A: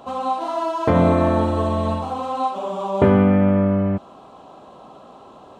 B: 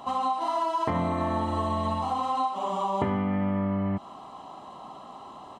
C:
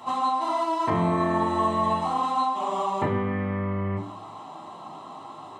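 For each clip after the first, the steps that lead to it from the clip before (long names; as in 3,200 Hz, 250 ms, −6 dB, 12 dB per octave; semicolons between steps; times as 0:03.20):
low-shelf EQ 230 Hz −8 dB; comb filter 1 ms, depth 55%; downward compressor, threshold −24 dBFS, peak gain reduction 10.5 dB
convolution reverb RT60 0.40 s, pre-delay 3 ms, DRR −2 dB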